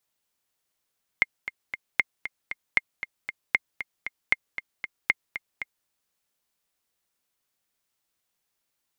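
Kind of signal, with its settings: metronome 232 bpm, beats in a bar 3, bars 6, 2120 Hz, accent 12 dB -6 dBFS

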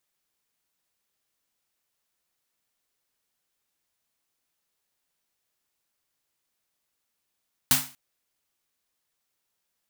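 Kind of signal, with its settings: snare drum length 0.24 s, tones 140 Hz, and 260 Hz, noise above 710 Hz, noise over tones 11.5 dB, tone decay 0.33 s, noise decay 0.35 s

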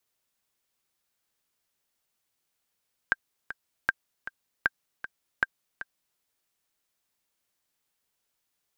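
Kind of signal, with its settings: metronome 156 bpm, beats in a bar 2, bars 4, 1580 Hz, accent 13 dB -9 dBFS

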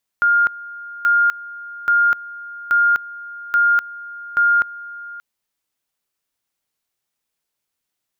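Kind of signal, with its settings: two-level tone 1410 Hz -11.5 dBFS, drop 19 dB, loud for 0.25 s, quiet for 0.58 s, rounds 6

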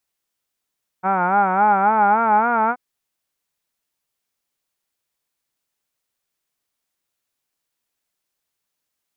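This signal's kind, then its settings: formant vowel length 1.73 s, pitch 182 Hz, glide +4.5 st, vibrato 3.6 Hz, vibrato depth 1.05 st, F1 830 Hz, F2 1400 Hz, F3 2300 Hz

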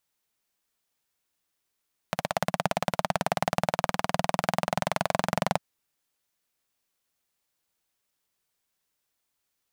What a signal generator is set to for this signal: single-cylinder engine model, changing speed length 3.45 s, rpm 2000, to 2700, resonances 180/670 Hz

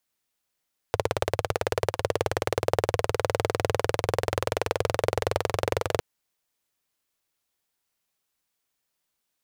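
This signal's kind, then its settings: single-cylinder engine model, changing speed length 5.06 s, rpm 2100, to 2700, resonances 100/480 Hz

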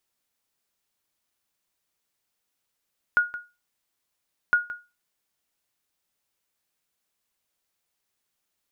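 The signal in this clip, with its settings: sonar ping 1440 Hz, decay 0.27 s, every 1.36 s, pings 2, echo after 0.17 s, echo -15 dB -12 dBFS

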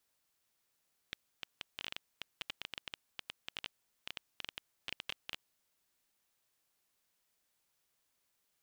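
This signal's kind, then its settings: random clicks 11/s -22.5 dBFS 4.33 s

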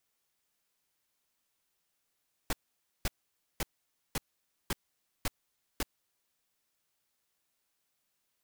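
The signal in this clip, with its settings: noise bursts pink, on 0.03 s, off 0.52 s, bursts 7, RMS -31 dBFS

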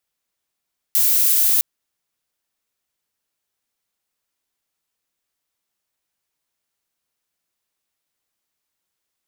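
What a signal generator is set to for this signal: noise violet, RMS -16 dBFS 0.66 s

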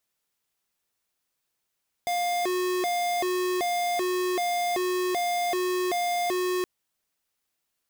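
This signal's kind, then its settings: siren hi-lo 364–704 Hz 1.3/s square -26.5 dBFS 4.57 s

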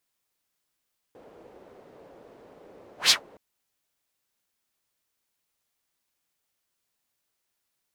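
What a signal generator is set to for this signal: whoosh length 2.22 s, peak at 1.95, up 0.13 s, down 0.12 s, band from 480 Hz, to 4600 Hz, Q 2.1, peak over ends 34 dB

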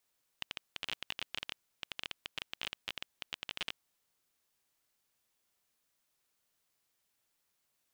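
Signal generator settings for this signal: random clicks 18/s -20 dBFS 3.37 s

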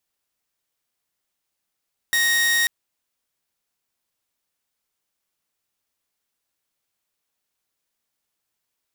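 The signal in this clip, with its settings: tone saw 1870 Hz -14.5 dBFS 0.54 s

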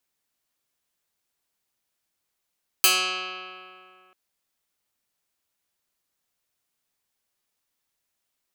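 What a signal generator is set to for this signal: plucked string F#3, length 1.29 s, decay 2.54 s, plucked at 0.1, medium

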